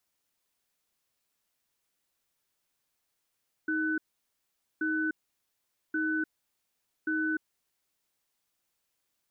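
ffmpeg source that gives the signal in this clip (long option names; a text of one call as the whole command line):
ffmpeg -f lavfi -i "aevalsrc='0.0335*(sin(2*PI*314*t)+sin(2*PI*1500*t))*clip(min(mod(t,1.13),0.3-mod(t,1.13))/0.005,0,1)':duration=4.47:sample_rate=44100" out.wav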